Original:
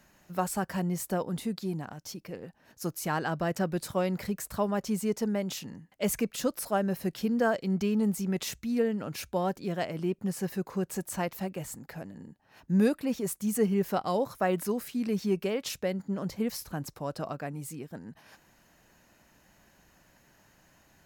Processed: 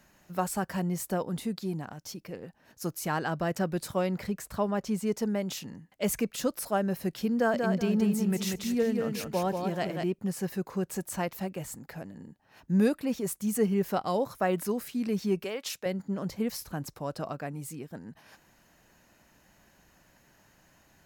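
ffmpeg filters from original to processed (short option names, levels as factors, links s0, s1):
-filter_complex "[0:a]asettb=1/sr,asplit=3[s0][s1][s2];[s0]atrim=end=4.074[s3];[s1]atrim=start=4.07:end=5.07,asetpts=PTS-STARTPTS,afade=t=in:d=0.004:c=qsin,afade=t=out:st=0.996:d=0.004:c=qsin,highshelf=f=6700:g=-6.5[s4];[s2]atrim=start=5.066[s5];[s3][s4]acrossfade=d=0.004:c1=hsin:c2=qsin[s6];[s6][s5]acrossfade=d=0.004:c1=qsin:c2=hsin,asettb=1/sr,asplit=3[s7][s8][s9];[s7]atrim=end=7.354[s10];[s8]atrim=start=7.35:end=10.04,asetpts=PTS-STARTPTS,afade=t=in:d=0.004:c=qsin,afade=t=out:st=2.686:d=0.004:c=qsin,aecho=1:1:188|376|564|752:0.596|0.161|0.0434|0.0117,atrim=end_sample=118629[s11];[s9]atrim=start=10.036[s12];[s10][s11]acrossfade=d=0.004:c1=hsin:c2=qsin[s13];[s13][s12]acrossfade=d=0.004:c1=qsin:c2=hsin,asettb=1/sr,asplit=3[s14][s15][s16];[s14]atrim=end=15.444[s17];[s15]atrim=start=15.44:end=15.86,asetpts=PTS-STARTPTS,afade=t=in:d=0.004:c=qsin,afade=t=out:st=0.416:d=0.004:c=qsin,highpass=f=620:p=1[s18];[s16]atrim=start=15.856[s19];[s17][s18]acrossfade=d=0.004:c1=hsin:c2=qsin[s20];[s20][s19]acrossfade=d=0.004:c1=qsin:c2=hsin"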